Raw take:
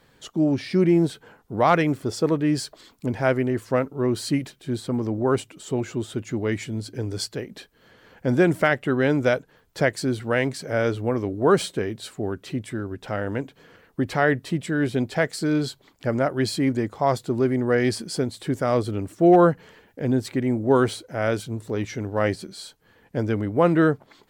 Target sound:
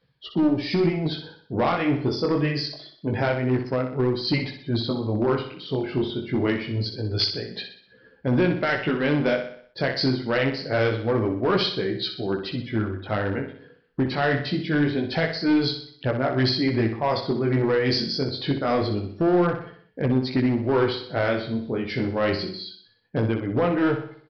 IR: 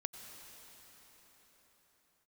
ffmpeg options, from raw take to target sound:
-af "tremolo=f=2.5:d=0.56,afftdn=nr=20:nf=-47,flanger=delay=15.5:depth=7.3:speed=0.25,acontrast=42,alimiter=limit=-15dB:level=0:latency=1:release=175,aemphasis=mode=production:type=75kf,aresample=11025,asoftclip=type=hard:threshold=-18.5dB,aresample=44100,aecho=1:1:62|124|186|248|310|372:0.398|0.191|0.0917|0.044|0.0211|0.0101,volume=2dB"

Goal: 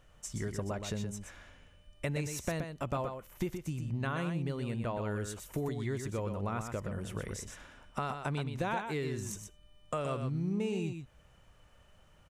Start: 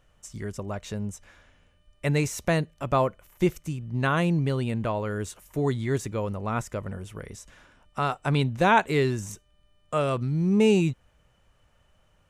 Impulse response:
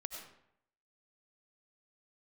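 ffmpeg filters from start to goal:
-filter_complex "[0:a]acompressor=threshold=-34dB:ratio=6,aecho=1:1:123:0.447,asplit=2[a][b];[1:a]atrim=start_sample=2205,afade=t=out:st=0.14:d=0.01,atrim=end_sample=6615[c];[b][c]afir=irnorm=-1:irlink=0,volume=-13.5dB[d];[a][d]amix=inputs=2:normalize=0"

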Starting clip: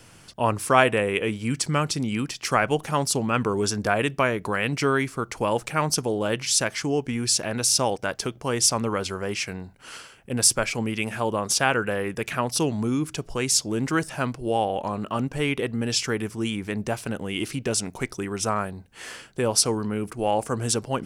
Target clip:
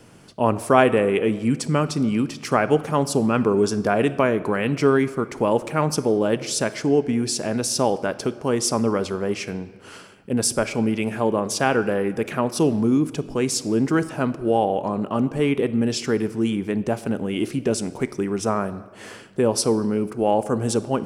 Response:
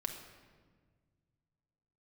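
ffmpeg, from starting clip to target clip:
-filter_complex "[0:a]equalizer=f=280:w=0.35:g=12.5,asplit=2[a][b];[1:a]atrim=start_sample=2205,lowshelf=f=280:g=-9.5[c];[b][c]afir=irnorm=-1:irlink=0,volume=-4.5dB[d];[a][d]amix=inputs=2:normalize=0,volume=-8dB"

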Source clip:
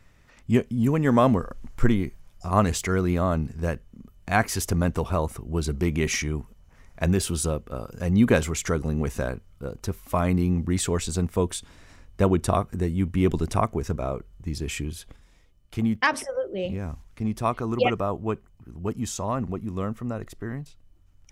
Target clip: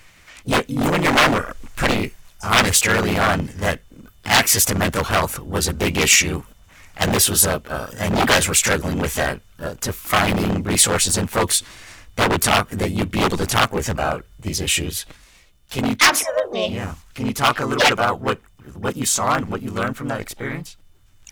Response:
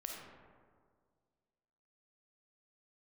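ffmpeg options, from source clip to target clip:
-filter_complex "[0:a]asplit=3[a][b][c];[b]asetrate=52444,aresample=44100,atempo=0.840896,volume=0dB[d];[c]asetrate=88200,aresample=44100,atempo=0.5,volume=-17dB[e];[a][d][e]amix=inputs=3:normalize=0,aeval=exprs='0.178*(abs(mod(val(0)/0.178+3,4)-2)-1)':c=same,tiltshelf=f=810:g=-6.5,volume=6dB"

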